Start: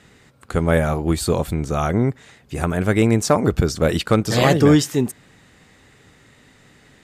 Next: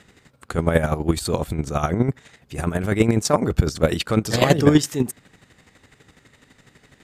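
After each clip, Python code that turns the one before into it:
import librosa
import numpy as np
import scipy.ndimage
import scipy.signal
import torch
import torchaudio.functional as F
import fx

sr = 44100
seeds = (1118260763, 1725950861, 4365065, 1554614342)

y = fx.chopper(x, sr, hz=12.0, depth_pct=60, duty_pct=30)
y = y * librosa.db_to_amplitude(2.0)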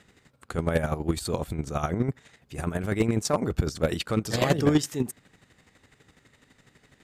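y = np.clip(x, -10.0 ** (-7.5 / 20.0), 10.0 ** (-7.5 / 20.0))
y = y * librosa.db_to_amplitude(-6.0)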